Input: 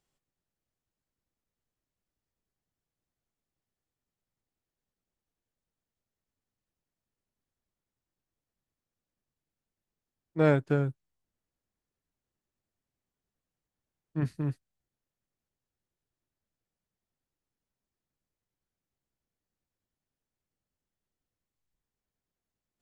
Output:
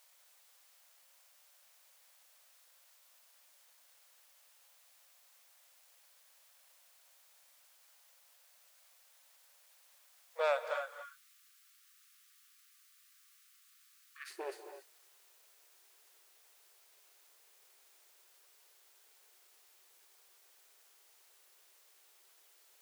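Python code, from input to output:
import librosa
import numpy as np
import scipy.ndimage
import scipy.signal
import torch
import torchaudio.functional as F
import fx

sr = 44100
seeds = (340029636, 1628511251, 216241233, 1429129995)

y = fx.rider(x, sr, range_db=10, speed_s=0.5)
y = fx.quant_dither(y, sr, seeds[0], bits=12, dither='triangular')
y = 10.0 ** (-27.0 / 20.0) * np.tanh(y / 10.0 ** (-27.0 / 20.0))
y = fx.brickwall_highpass(y, sr, low_hz=fx.steps((0.0, 480.0), (10.73, 1100.0), (14.29, 340.0)))
y = fx.rev_gated(y, sr, seeds[1], gate_ms=310, shape='rising', drr_db=8.5)
y = F.gain(torch.from_numpy(y), 6.0).numpy()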